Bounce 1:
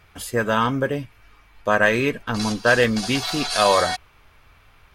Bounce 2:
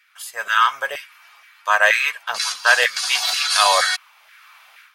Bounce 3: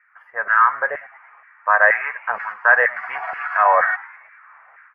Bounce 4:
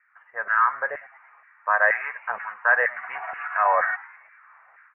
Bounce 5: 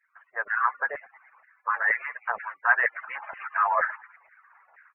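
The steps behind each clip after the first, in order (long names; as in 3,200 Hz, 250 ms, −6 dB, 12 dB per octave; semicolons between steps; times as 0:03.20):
guitar amp tone stack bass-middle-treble 10-0-10; automatic gain control gain up to 14 dB; auto-filter high-pass saw down 2.1 Hz 560–1,800 Hz; level −1.5 dB
elliptic low-pass filter 1,900 Hz, stop band 50 dB; in parallel at −2 dB: brickwall limiter −10.5 dBFS, peak gain reduction 7.5 dB; on the sum: echo with shifted repeats 105 ms, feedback 56%, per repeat +120 Hz, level −20.5 dB; level −1 dB
Butterworth low-pass 3,000 Hz 96 dB per octave; level −5.5 dB
harmonic-percussive split with one part muted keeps percussive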